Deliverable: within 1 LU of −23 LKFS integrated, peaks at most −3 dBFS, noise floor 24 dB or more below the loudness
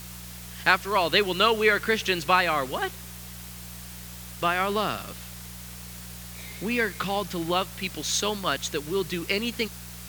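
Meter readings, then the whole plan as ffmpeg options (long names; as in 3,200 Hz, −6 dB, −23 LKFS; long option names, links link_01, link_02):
mains hum 60 Hz; hum harmonics up to 180 Hz; level of the hum −41 dBFS; background noise floor −41 dBFS; target noise floor −50 dBFS; integrated loudness −25.5 LKFS; sample peak −4.5 dBFS; target loudness −23.0 LKFS
→ -af "bandreject=frequency=60:width_type=h:width=4,bandreject=frequency=120:width_type=h:width=4,bandreject=frequency=180:width_type=h:width=4"
-af "afftdn=noise_reduction=9:noise_floor=-41"
-af "volume=2.5dB,alimiter=limit=-3dB:level=0:latency=1"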